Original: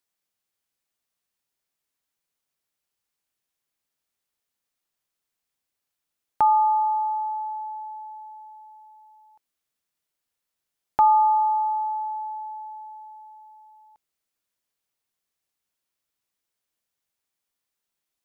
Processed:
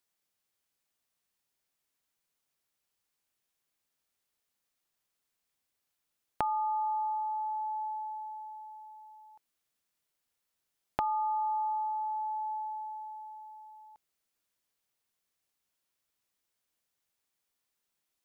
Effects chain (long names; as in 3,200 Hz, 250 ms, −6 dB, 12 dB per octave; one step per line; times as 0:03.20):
dynamic equaliser 890 Hz, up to −6 dB, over −33 dBFS
downward compressor, threshold −29 dBFS, peak gain reduction 9.5 dB